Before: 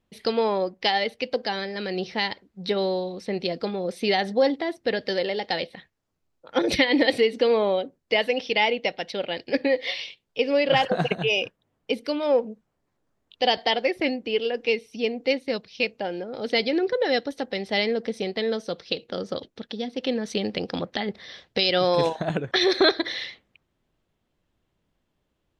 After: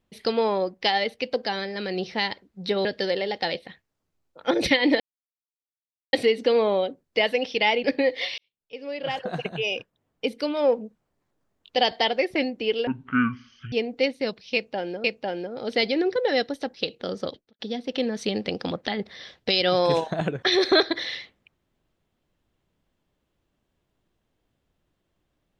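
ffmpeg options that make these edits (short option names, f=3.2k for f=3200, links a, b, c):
-filter_complex "[0:a]asplit=10[a][b][c][d][e][f][g][h][i][j];[a]atrim=end=2.852[k];[b]atrim=start=4.928:end=7.08,asetpts=PTS-STARTPTS,afade=t=out:st=2.148:d=0.004:c=hsin,apad=pad_dur=1.13[l];[c]atrim=start=7.08:end=8.792,asetpts=PTS-STARTPTS,afade=t=in:d=0.004:c=hsin[m];[d]atrim=start=9.498:end=10.04,asetpts=PTS-STARTPTS,afade=t=out:st=0.538:d=0.004:c=hsin[n];[e]atrim=start=10.04:end=14.534,asetpts=PTS-STARTPTS,afade=t=in:d=2.02[o];[f]atrim=start=14.53:end=14.99,asetpts=PTS-STARTPTS,asetrate=23814,aresample=44100[p];[g]atrim=start=14.986:end=16.312[q];[h]atrim=start=15.808:end=17.512[r];[i]atrim=start=18.828:end=19.68,asetpts=PTS-STARTPTS,afade=t=out:st=0.542:d=0.31:c=qua[s];[j]atrim=start=19.68,asetpts=PTS-STARTPTS,afade=t=in:d=0.004:c=hsin[t];[l][m]concat=n=2:v=0:a=1[u];[k][u]acrossfade=d=0.004:c1=hsin:c2=hsin[v];[n][o]concat=n=2:v=0:a=1[w];[v][w]acrossfade=d=0.004:c1=hsin:c2=hsin[x];[x][p]acrossfade=d=0.004:c1=hsin:c2=hsin[y];[y][q]acrossfade=d=0.004:c1=hsin:c2=hsin[z];[z][r]acrossfade=d=0.004:c1=hsin:c2=hsin[aa];[s][t]concat=n=2:v=0:a=1[ab];[aa][ab]acrossfade=d=0.004:c1=hsin:c2=hsin"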